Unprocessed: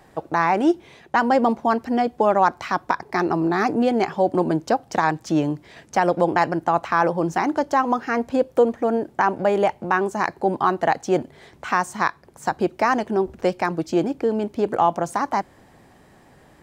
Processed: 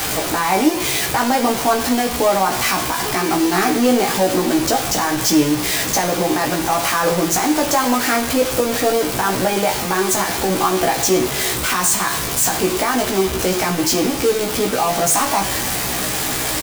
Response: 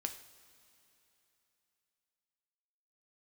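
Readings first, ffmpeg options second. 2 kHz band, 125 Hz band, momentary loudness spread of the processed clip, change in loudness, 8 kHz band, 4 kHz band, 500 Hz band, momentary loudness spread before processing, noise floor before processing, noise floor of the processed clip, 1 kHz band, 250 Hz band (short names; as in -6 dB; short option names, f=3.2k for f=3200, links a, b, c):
+5.0 dB, +4.5 dB, 3 LU, +4.5 dB, +24.5 dB, +18.0 dB, +2.5 dB, 6 LU, -53 dBFS, -23 dBFS, +1.5 dB, +4.0 dB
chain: -filter_complex "[0:a]aeval=exprs='val(0)+0.5*0.0891*sgn(val(0))':c=same,highshelf=f=3.2k:g=12,alimiter=limit=-9dB:level=0:latency=1,acrossover=split=130|4500[a][b][c];[b]acrusher=bits=4:mix=0:aa=0.000001[d];[a][d][c]amix=inputs=3:normalize=0,asplit=2[e][f];[f]adelay=16,volume=-3.5dB[g];[e][g]amix=inputs=2:normalize=0[h];[1:a]atrim=start_sample=2205[i];[h][i]afir=irnorm=-1:irlink=0"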